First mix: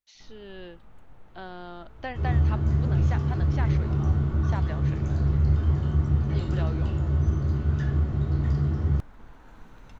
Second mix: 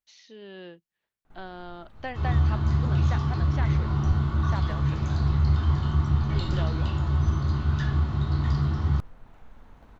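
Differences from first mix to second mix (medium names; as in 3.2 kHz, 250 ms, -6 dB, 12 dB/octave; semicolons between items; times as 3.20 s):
first sound: entry +1.10 s; second sound: add ten-band graphic EQ 500 Hz -7 dB, 1 kHz +10 dB, 4 kHz +12 dB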